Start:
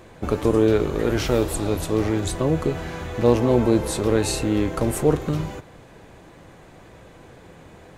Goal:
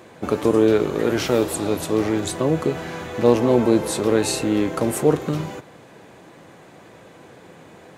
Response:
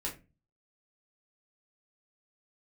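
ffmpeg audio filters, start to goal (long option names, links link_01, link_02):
-af "highpass=150,volume=2dB"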